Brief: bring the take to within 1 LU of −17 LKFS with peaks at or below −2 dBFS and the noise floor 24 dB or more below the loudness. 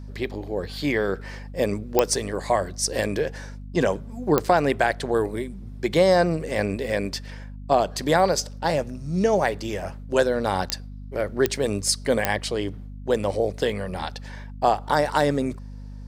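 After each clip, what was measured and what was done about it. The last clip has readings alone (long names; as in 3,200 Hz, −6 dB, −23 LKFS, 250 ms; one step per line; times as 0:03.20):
number of clicks 5; mains hum 50 Hz; hum harmonics up to 250 Hz; level of the hum −35 dBFS; integrated loudness −24.5 LKFS; sample peak −1.0 dBFS; target loudness −17.0 LKFS
→ click removal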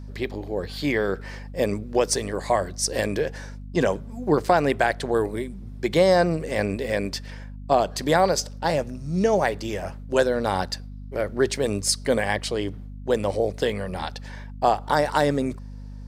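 number of clicks 0; mains hum 50 Hz; hum harmonics up to 250 Hz; level of the hum −35 dBFS
→ hum removal 50 Hz, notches 5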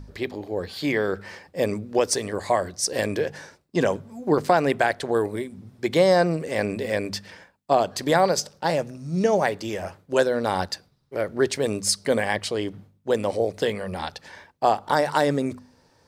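mains hum none found; integrated loudness −24.5 LKFS; sample peak −4.5 dBFS; target loudness −17.0 LKFS
→ level +7.5 dB
brickwall limiter −2 dBFS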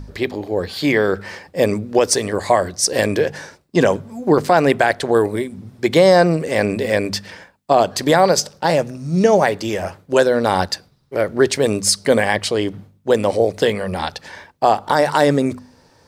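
integrated loudness −17.5 LKFS; sample peak −2.0 dBFS; background noise floor −54 dBFS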